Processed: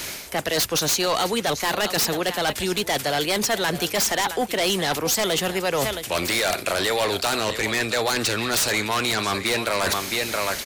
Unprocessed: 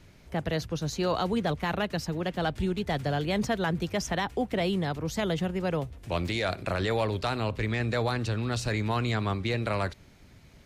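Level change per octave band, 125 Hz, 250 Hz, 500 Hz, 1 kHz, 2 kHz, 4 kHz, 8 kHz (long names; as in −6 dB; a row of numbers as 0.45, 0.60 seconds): −4.5, +1.5, +6.0, +7.0, +10.0, +13.5, +19.0 decibels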